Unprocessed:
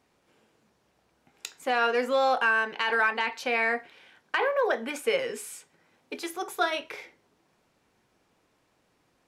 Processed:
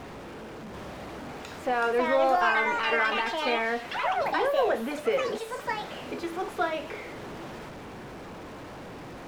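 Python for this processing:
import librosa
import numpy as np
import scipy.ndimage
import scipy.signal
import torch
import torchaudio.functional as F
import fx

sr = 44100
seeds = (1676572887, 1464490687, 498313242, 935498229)

y = x + 0.5 * 10.0 ** (-33.0 / 20.0) * np.sign(x)
y = fx.lowpass(y, sr, hz=1100.0, slope=6)
y = fx.echo_pitch(y, sr, ms=739, semitones=5, count=2, db_per_echo=-3.0)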